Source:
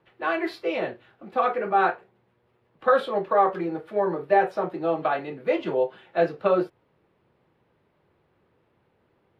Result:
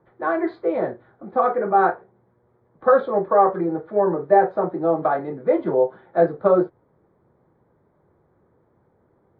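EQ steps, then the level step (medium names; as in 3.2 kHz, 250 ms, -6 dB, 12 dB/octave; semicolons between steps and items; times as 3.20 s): boxcar filter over 16 samples; distance through air 160 m; +6.0 dB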